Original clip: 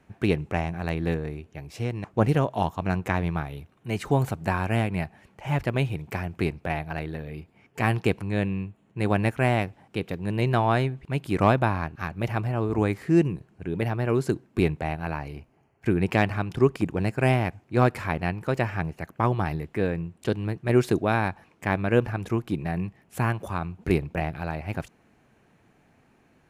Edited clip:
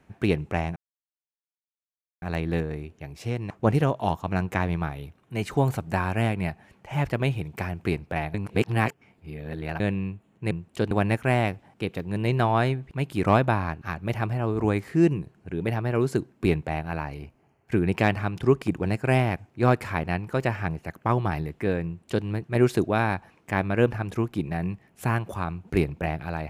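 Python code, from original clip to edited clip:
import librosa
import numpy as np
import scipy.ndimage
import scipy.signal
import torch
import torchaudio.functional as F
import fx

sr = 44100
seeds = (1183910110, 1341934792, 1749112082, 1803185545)

y = fx.edit(x, sr, fx.insert_silence(at_s=0.76, length_s=1.46),
    fx.reverse_span(start_s=6.88, length_s=1.46),
    fx.duplicate(start_s=19.99, length_s=0.4, to_s=9.05), tone=tone)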